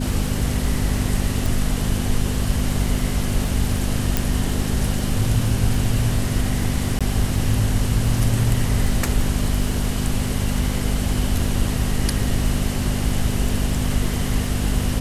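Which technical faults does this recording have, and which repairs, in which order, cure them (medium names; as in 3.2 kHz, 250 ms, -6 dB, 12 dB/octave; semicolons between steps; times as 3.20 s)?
crackle 27 per s -27 dBFS
hum 50 Hz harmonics 5 -25 dBFS
1.46 s: pop
4.17 s: pop
6.99–7.01 s: dropout 16 ms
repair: de-click; de-hum 50 Hz, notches 5; interpolate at 6.99 s, 16 ms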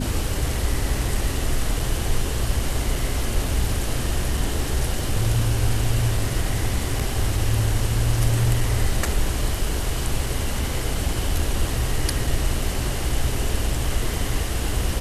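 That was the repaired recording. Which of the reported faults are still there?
nothing left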